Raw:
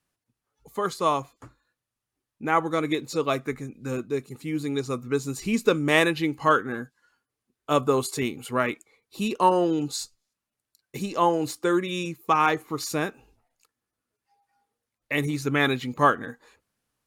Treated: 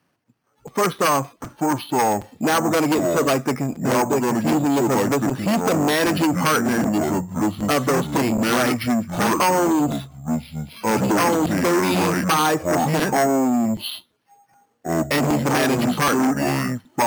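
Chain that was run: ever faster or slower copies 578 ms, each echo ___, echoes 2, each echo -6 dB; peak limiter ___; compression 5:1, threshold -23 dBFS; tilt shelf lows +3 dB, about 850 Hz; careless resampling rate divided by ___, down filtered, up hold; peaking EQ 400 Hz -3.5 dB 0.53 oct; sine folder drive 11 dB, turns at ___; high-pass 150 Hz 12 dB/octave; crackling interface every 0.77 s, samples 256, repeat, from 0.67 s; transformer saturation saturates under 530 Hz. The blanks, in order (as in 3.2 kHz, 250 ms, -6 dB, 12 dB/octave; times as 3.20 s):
-5 st, -10 dBFS, 6×, -13 dBFS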